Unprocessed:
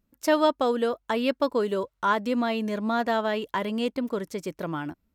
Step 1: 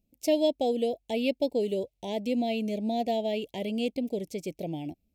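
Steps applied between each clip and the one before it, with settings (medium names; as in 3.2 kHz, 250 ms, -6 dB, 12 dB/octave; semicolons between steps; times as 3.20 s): elliptic band-stop 750–2300 Hz, stop band 60 dB; trim -1.5 dB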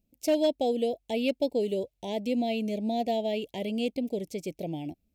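overload inside the chain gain 17.5 dB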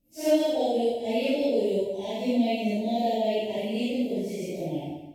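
phase randomisation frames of 200 ms; on a send at -6 dB: reverberation RT60 0.85 s, pre-delay 92 ms; on the sum: trim +2 dB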